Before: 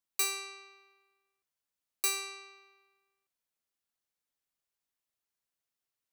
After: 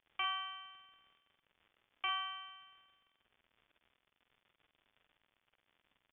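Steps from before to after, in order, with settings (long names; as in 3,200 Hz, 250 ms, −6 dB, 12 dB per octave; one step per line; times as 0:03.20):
high-shelf EQ 2,100 Hz −11 dB
surface crackle 100 per second −57 dBFS
double-tracking delay 48 ms −5 dB
voice inversion scrambler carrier 3,500 Hz
level +4.5 dB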